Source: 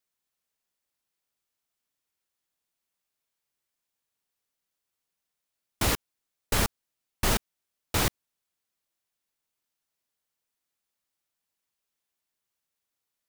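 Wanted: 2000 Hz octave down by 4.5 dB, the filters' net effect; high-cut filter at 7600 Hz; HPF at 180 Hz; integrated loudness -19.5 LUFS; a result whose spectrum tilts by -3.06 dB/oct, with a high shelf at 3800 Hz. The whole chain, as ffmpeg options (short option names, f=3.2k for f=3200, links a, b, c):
-af "highpass=180,lowpass=7.6k,equalizer=f=2k:t=o:g=-7.5,highshelf=f=3.8k:g=6,volume=11dB"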